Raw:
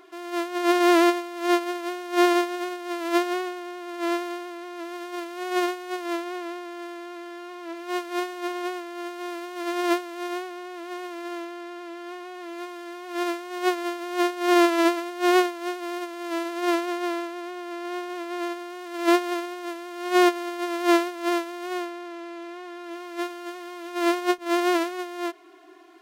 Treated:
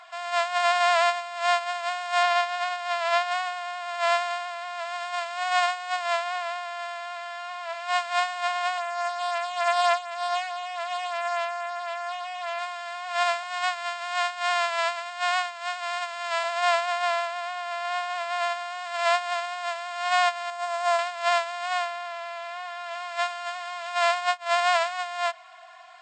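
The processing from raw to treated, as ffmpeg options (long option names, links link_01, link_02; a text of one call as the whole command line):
ffmpeg -i in.wav -filter_complex "[0:a]asettb=1/sr,asplit=3[link_01][link_02][link_03];[link_01]atrim=end=2.234[link_04];[link_02]atrim=start=2.23:end=3.31,asetpts=PTS-STARTPTS,afade=type=in:duration=0.004:curve=qsin,afade=type=out:start_time=1.076:duration=0.004:curve=qsin,acrossover=split=7300[link_05][link_06];[link_06]acompressor=threshold=-55dB:ratio=4:attack=1:release=60[link_07];[link_05][link_07]amix=inputs=2:normalize=0[link_08];[link_03]atrim=start=3.306[link_09];[link_04][link_08]acrossfade=duration=0.004:curve1=hsin:curve2=qsin[link_10];[link_10][link_09]acrossfade=duration=0.004:curve1=qsin:curve2=hsin,asettb=1/sr,asplit=3[link_11][link_12][link_13];[link_11]atrim=end=8.774[link_14];[link_12]atrim=start=8.77:end=12.59,asetpts=PTS-STARTPTS,afade=type=in:duration=0.004:curve=qsin,afade=type=out:start_time=3.816:duration=0.004:curve=qsin,aecho=1:1:5.9:0.65,atrim=end_sample=168462[link_15];[link_13]atrim=start=12.586[link_16];[link_14][link_15]acrossfade=duration=0.004:curve1=hsin:curve2=qsin[link_17];[link_17][link_16]acrossfade=duration=0.004:curve1=qsin:curve2=hsin,asettb=1/sr,asplit=3[link_18][link_19][link_20];[link_18]atrim=end=13.434[link_21];[link_19]atrim=start=13.43:end=16.44,asetpts=PTS-STARTPTS,afade=type=in:duration=0.004:curve=qsin,afade=type=out:start_time=3.006:duration=0.004:curve=qsin,highpass=730[link_22];[link_20]atrim=start=16.436[link_23];[link_21][link_22]acrossfade=duration=0.004:curve1=hsin:curve2=qsin[link_24];[link_24][link_23]acrossfade=duration=0.004:curve1=qsin:curve2=hsin,asettb=1/sr,asplit=3[link_25][link_26][link_27];[link_25]atrim=end=20.504[link_28];[link_26]atrim=start=20.5:end=20.99,asetpts=PTS-STARTPTS,afade=type=in:duration=0.004:curve=qsin,afade=type=out:start_time=0.486:duration=0.004:curve=qsin,equalizer=frequency=2800:width=0.54:gain=-8.5[link_29];[link_27]atrim=start=20.986[link_30];[link_28][link_29]acrossfade=duration=0.004:curve1=hsin:curve2=qsin[link_31];[link_31][link_30]acrossfade=duration=0.004:curve1=qsin:curve2=hsin,bandreject=frequency=6000:width=7.4,afftfilt=real='re*between(b*sr/4096,630,8500)':imag='im*between(b*sr/4096,630,8500)':win_size=4096:overlap=0.75,alimiter=limit=-19dB:level=0:latency=1:release=484,volume=7dB" out.wav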